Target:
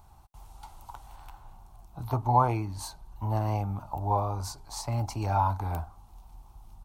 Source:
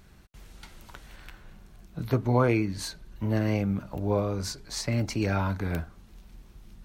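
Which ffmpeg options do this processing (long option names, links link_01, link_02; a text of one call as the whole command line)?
ffmpeg -i in.wav -af "firequalizer=gain_entry='entry(110,0);entry(180,-12);entry(270,-8);entry(500,-10);entry(820,13);entry(1700,-15);entry(2700,-9);entry(9500,0)':delay=0.05:min_phase=1" out.wav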